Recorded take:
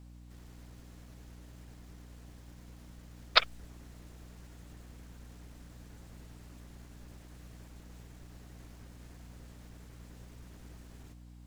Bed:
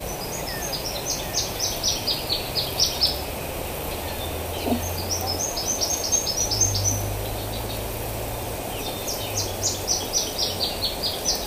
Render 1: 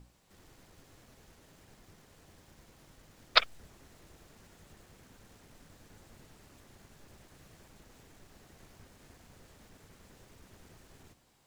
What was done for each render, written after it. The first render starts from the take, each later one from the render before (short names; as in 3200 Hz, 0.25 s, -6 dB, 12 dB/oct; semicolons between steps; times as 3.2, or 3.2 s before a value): notches 60/120/180/240/300 Hz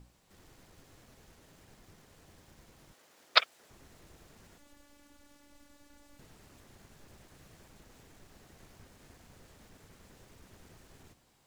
2.93–3.7 HPF 410 Hz; 4.58–6.19 robotiser 288 Hz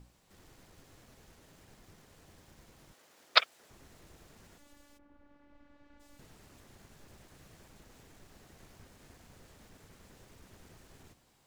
4.97–5.99 LPF 1200 Hz -> 2600 Hz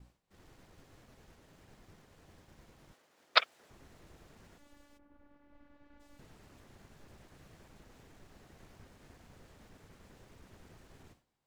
expander -58 dBFS; high shelf 4600 Hz -7.5 dB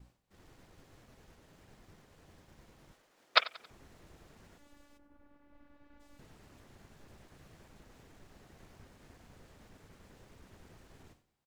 feedback echo 91 ms, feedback 43%, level -19.5 dB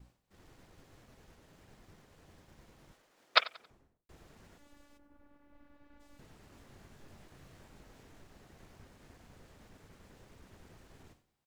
3.4–4.09 studio fade out; 6.5–8.22 doubler 22 ms -6 dB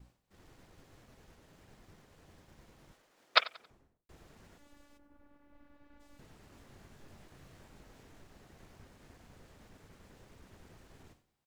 nothing audible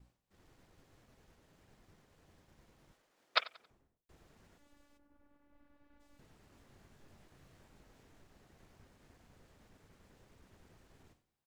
gain -6 dB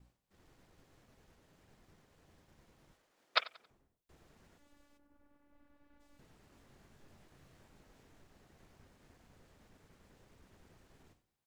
notches 50/100 Hz